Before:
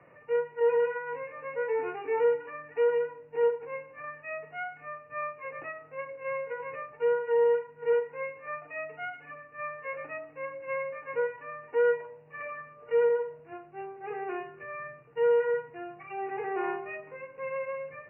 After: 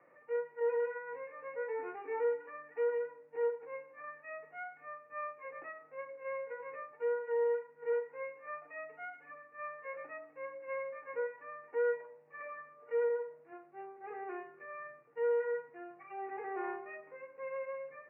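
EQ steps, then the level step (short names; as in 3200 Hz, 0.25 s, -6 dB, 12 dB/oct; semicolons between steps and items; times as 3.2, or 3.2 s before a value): air absorption 460 m; speaker cabinet 400–2200 Hz, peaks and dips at 430 Hz -6 dB, 670 Hz -6 dB, 980 Hz -6 dB, 1500 Hz -4 dB; 0.0 dB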